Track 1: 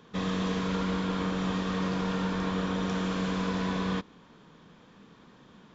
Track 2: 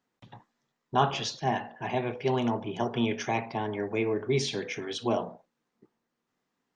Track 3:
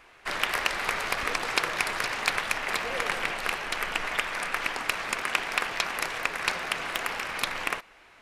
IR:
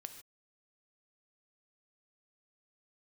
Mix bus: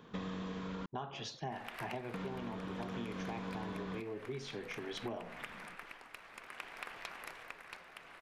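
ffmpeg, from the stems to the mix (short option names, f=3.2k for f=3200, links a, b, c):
-filter_complex "[0:a]volume=-1.5dB,asplit=3[a][b][c];[a]atrim=end=0.86,asetpts=PTS-STARTPTS,afade=t=out:st=0.856:d=0.004:c=hsin[d];[b]atrim=start=0.86:end=2.14,asetpts=PTS-STARTPTS,volume=0[e];[c]atrim=start=2.14,asetpts=PTS-STARTPTS,afade=t=in:d=0.004:c=hsin[f];[d][e][f]concat=n=3:v=0:a=1[g];[1:a]volume=-3dB[h];[2:a]adelay=1250,volume=-15.5dB[i];[g][h][i]amix=inputs=3:normalize=0,equalizer=f=6.3k:w=0.79:g=-5.5,tremolo=f=0.57:d=0.54,acompressor=threshold=-38dB:ratio=10"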